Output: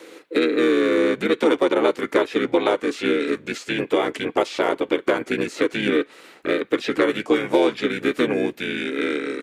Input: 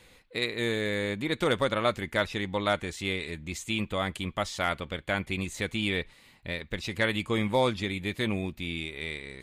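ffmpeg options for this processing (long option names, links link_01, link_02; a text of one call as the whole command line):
ffmpeg -i in.wav -filter_complex "[0:a]highpass=frequency=450:width_type=q:width=4.4,acrossover=split=1100|4800[link_01][link_02][link_03];[link_01]acompressor=threshold=-28dB:ratio=4[link_04];[link_02]acompressor=threshold=-36dB:ratio=4[link_05];[link_03]acompressor=threshold=-55dB:ratio=4[link_06];[link_04][link_05][link_06]amix=inputs=3:normalize=0,asplit=3[link_07][link_08][link_09];[link_08]asetrate=29433,aresample=44100,atempo=1.49831,volume=-1dB[link_10];[link_09]asetrate=37084,aresample=44100,atempo=1.18921,volume=-8dB[link_11];[link_07][link_10][link_11]amix=inputs=3:normalize=0,volume=7.5dB" out.wav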